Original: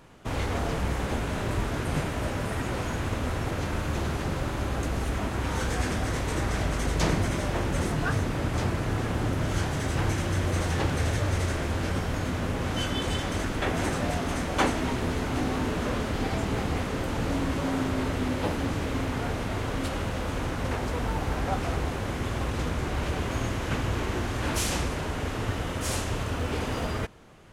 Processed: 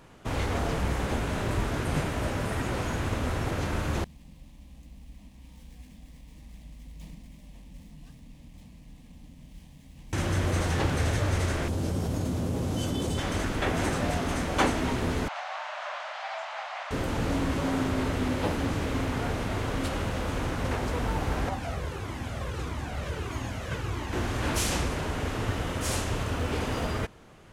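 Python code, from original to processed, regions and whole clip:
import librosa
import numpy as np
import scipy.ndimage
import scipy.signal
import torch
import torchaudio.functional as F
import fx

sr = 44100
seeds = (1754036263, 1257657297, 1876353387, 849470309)

y = fx.chain(x, sr, fx.median_filter(points=9),
    fx.tone_stack(knobs='6-0-2'),
    fx.fixed_phaser(hz=380.0, stages=6), at=(4.04, 10.13))
y = fx.chain(y, sr, fx.highpass(hz=70.0, slope=12),
    fx.peak_eq(hz=1800.0, db=-14.5, octaves=2.2),
    fx.env_flatten(amount_pct=70), at=(11.68, 13.18))
y = fx.chain(y, sr, fx.steep_highpass(hz=590.0, slope=96),
    fx.air_absorb(metres=140.0), at=(15.28, 16.91))
y = fx.chain(y, sr, fx.highpass(hz=59.0, slope=12),
    fx.comb_cascade(direction='falling', hz=1.6), at=(21.49, 24.13))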